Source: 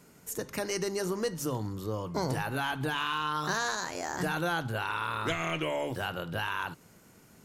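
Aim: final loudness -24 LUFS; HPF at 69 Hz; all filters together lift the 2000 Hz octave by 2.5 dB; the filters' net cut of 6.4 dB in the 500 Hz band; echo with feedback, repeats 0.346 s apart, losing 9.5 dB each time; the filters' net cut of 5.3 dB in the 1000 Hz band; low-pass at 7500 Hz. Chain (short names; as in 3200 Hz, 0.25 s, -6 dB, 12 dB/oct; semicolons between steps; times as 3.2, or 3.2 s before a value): HPF 69 Hz; LPF 7500 Hz; bell 500 Hz -6.5 dB; bell 1000 Hz -8 dB; bell 2000 Hz +7.5 dB; feedback echo 0.346 s, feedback 33%, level -9.5 dB; gain +8.5 dB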